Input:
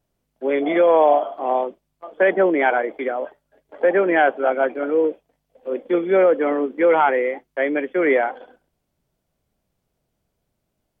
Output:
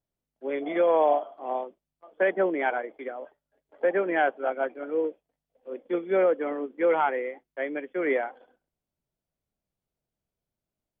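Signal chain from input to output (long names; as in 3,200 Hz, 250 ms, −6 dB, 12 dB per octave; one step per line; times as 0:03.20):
expander for the loud parts 1.5 to 1, over −28 dBFS
level −6.5 dB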